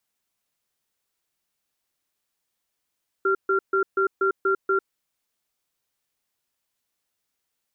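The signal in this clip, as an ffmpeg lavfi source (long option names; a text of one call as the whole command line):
ffmpeg -f lavfi -i "aevalsrc='0.0891*(sin(2*PI*387*t)+sin(2*PI*1380*t))*clip(min(mod(t,0.24),0.1-mod(t,0.24))/0.005,0,1)':duration=1.68:sample_rate=44100" out.wav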